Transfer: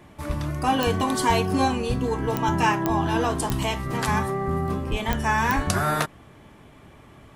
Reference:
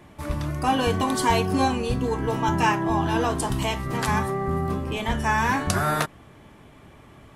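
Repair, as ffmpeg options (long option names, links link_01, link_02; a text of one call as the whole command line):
ffmpeg -i in.wav -filter_complex "[0:a]adeclick=threshold=4,asplit=3[link_01][link_02][link_03];[link_01]afade=type=out:start_time=4.9:duration=0.02[link_04];[link_02]highpass=frequency=140:width=0.5412,highpass=frequency=140:width=1.3066,afade=type=in:start_time=4.9:duration=0.02,afade=type=out:start_time=5.02:duration=0.02[link_05];[link_03]afade=type=in:start_time=5.02:duration=0.02[link_06];[link_04][link_05][link_06]amix=inputs=3:normalize=0,asplit=3[link_07][link_08][link_09];[link_07]afade=type=out:start_time=5.55:duration=0.02[link_10];[link_08]highpass=frequency=140:width=0.5412,highpass=frequency=140:width=1.3066,afade=type=in:start_time=5.55:duration=0.02,afade=type=out:start_time=5.67:duration=0.02[link_11];[link_09]afade=type=in:start_time=5.67:duration=0.02[link_12];[link_10][link_11][link_12]amix=inputs=3:normalize=0" out.wav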